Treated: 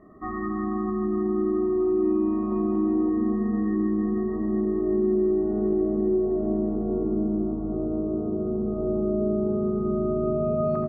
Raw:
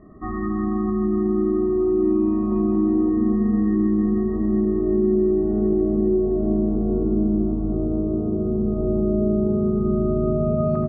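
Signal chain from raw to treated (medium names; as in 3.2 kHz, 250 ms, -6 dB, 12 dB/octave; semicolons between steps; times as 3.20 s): bass shelf 220 Hz -11 dB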